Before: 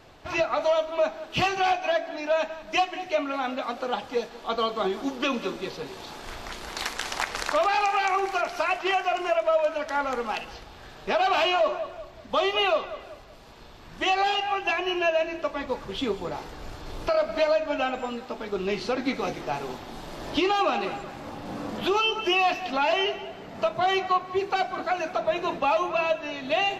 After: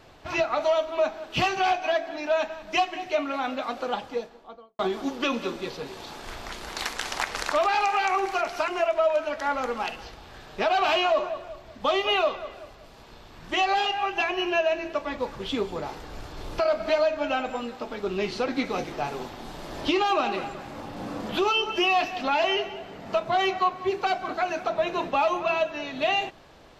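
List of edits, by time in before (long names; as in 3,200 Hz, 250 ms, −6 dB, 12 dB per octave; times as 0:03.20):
0:03.85–0:04.79: fade out and dull
0:08.68–0:09.17: remove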